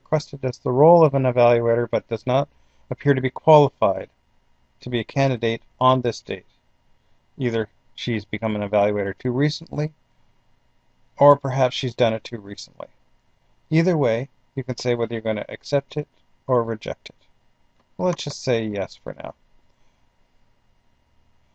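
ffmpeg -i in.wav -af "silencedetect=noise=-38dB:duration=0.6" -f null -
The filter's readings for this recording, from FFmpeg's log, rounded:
silence_start: 4.05
silence_end: 4.82 | silence_duration: 0.77
silence_start: 6.39
silence_end: 7.38 | silence_duration: 0.99
silence_start: 9.89
silence_end: 11.19 | silence_duration: 1.30
silence_start: 12.85
silence_end: 13.71 | silence_duration: 0.86
silence_start: 17.10
silence_end: 17.99 | silence_duration: 0.89
silence_start: 19.31
silence_end: 21.55 | silence_duration: 2.24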